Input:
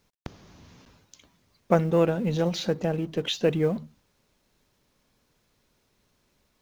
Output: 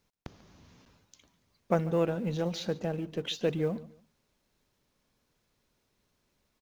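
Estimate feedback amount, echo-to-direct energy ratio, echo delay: 28%, -19.0 dB, 0.142 s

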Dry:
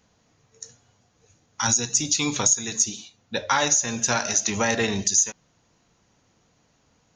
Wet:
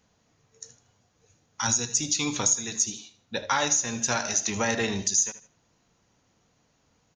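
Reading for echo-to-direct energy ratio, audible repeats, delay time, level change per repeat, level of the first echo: -14.5 dB, 2, 78 ms, -10.5 dB, -15.0 dB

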